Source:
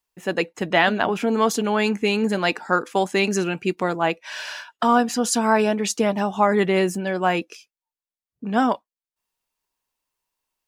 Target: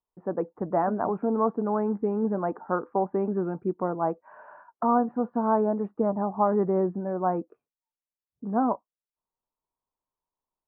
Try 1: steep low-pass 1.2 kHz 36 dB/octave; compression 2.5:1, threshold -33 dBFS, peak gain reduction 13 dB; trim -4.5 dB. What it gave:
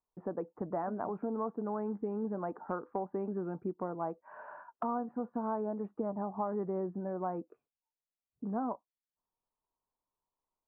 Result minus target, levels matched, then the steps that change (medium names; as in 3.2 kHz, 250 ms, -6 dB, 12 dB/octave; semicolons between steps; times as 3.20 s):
compression: peak gain reduction +13 dB
remove: compression 2.5:1, threshold -33 dBFS, peak gain reduction 13 dB